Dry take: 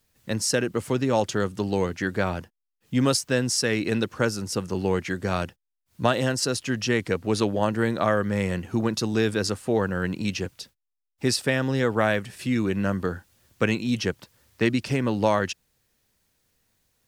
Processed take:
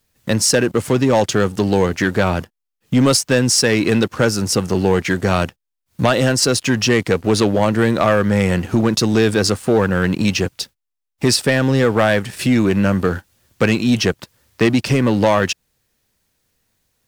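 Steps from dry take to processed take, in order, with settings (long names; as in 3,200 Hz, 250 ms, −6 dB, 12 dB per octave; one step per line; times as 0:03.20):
in parallel at +1 dB: downward compressor, threshold −31 dBFS, peak gain reduction 15 dB
on the sum: leveller curve on the samples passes 2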